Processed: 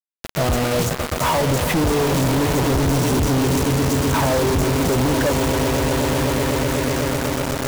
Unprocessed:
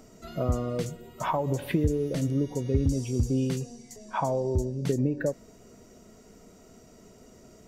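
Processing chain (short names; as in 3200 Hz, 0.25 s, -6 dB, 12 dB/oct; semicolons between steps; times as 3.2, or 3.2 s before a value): swelling echo 0.125 s, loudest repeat 8, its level -13.5 dB; flange 1.2 Hz, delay 0.3 ms, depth 7.4 ms, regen +83%; companded quantiser 2-bit; gain +8.5 dB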